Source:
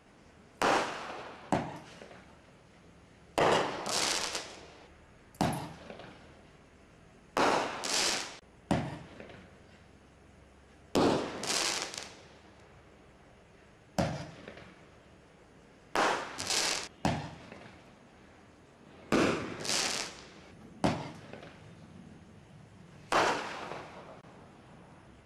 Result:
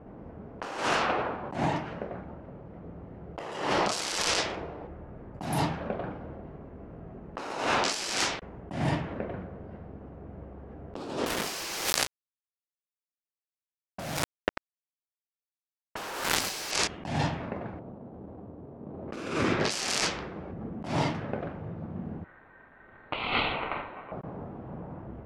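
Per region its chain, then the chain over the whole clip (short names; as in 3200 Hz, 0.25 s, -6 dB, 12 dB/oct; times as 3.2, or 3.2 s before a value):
11.26–16.71 low shelf 110 Hz -9 dB + companded quantiser 2-bit + mismatched tape noise reduction encoder only
17.79–19.08 median filter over 25 samples + HPF 64 Hz
22.24–24.12 elliptic low-pass 2400 Hz, stop band 60 dB + ring modulator 1700 Hz
whole clip: low-pass opened by the level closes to 630 Hz, open at -29 dBFS; negative-ratio compressor -39 dBFS, ratio -1; gain +8 dB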